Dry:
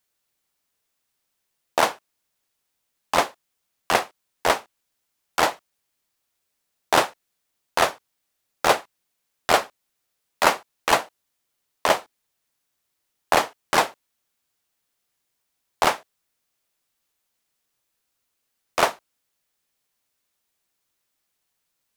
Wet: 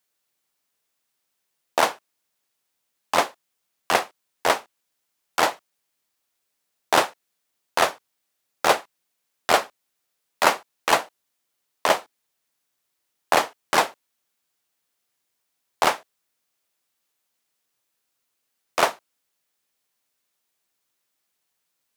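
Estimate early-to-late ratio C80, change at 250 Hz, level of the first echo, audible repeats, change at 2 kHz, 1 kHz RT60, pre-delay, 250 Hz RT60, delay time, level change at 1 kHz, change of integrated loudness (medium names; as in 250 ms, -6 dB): no reverb, -1.0 dB, no echo, no echo, 0.0 dB, no reverb, no reverb, no reverb, no echo, 0.0 dB, 0.0 dB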